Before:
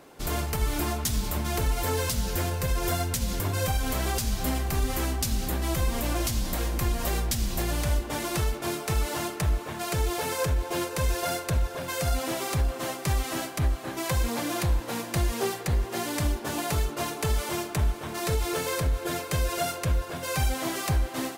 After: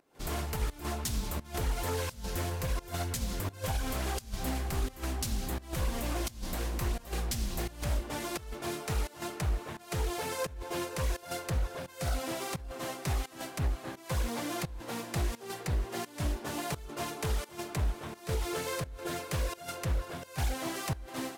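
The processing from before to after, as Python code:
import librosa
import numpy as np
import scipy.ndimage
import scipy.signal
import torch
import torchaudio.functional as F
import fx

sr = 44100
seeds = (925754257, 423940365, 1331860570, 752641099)

y = fx.volume_shaper(x, sr, bpm=86, per_beat=1, depth_db=-18, release_ms=146.0, shape='slow start')
y = fx.doppler_dist(y, sr, depth_ms=0.4)
y = y * 10.0 ** (-5.5 / 20.0)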